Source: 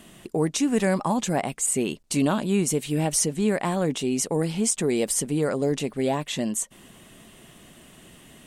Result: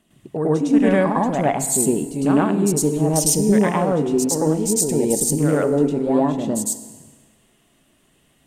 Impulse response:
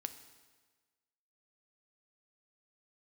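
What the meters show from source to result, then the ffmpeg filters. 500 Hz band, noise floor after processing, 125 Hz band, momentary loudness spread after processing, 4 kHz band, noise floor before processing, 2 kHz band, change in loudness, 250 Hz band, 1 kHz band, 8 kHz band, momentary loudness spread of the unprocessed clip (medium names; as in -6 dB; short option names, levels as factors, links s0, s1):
+6.5 dB, -60 dBFS, +6.0 dB, 6 LU, -0.5 dB, -51 dBFS, +3.0 dB, +6.0 dB, +7.0 dB, +6.5 dB, +5.0 dB, 4 LU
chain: -filter_complex "[0:a]aphaser=in_gain=1:out_gain=1:delay=3.7:decay=0.25:speed=0.58:type=triangular,afwtdn=0.0224,asplit=2[s0][s1];[1:a]atrim=start_sample=2205,adelay=105[s2];[s1][s2]afir=irnorm=-1:irlink=0,volume=2.24[s3];[s0][s3]amix=inputs=2:normalize=0"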